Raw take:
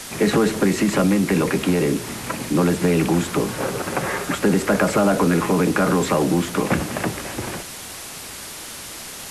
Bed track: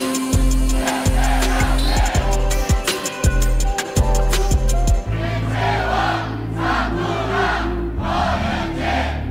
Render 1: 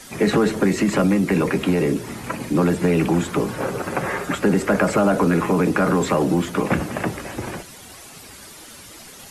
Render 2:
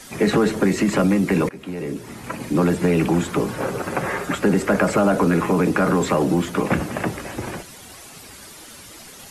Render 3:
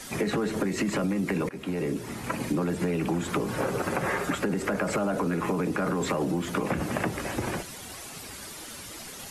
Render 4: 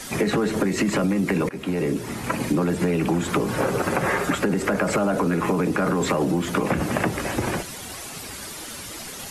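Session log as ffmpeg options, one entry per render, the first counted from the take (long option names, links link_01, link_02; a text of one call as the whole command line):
ffmpeg -i in.wav -af "afftdn=noise_reduction=10:noise_floor=-35" out.wav
ffmpeg -i in.wav -filter_complex "[0:a]asplit=2[link_01][link_02];[link_01]atrim=end=1.49,asetpts=PTS-STARTPTS,afade=type=out:start_time=1.486:duration=0.004:curve=hsin:silence=0.1[link_03];[link_02]atrim=start=1.49,asetpts=PTS-STARTPTS,afade=type=in:duration=1.12:silence=0.1[link_04];[link_03][link_04]concat=n=2:v=0:a=1" out.wav
ffmpeg -i in.wav -af "alimiter=limit=-12.5dB:level=0:latency=1:release=100,acompressor=threshold=-24dB:ratio=6" out.wav
ffmpeg -i in.wav -af "volume=5.5dB" out.wav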